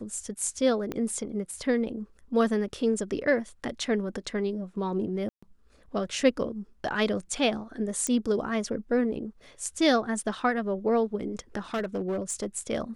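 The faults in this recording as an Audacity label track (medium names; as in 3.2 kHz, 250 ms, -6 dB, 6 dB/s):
0.920000	0.920000	pop -19 dBFS
5.290000	5.420000	dropout 135 ms
8.070000	8.070000	pop -15 dBFS
11.740000	12.460000	clipped -25.5 dBFS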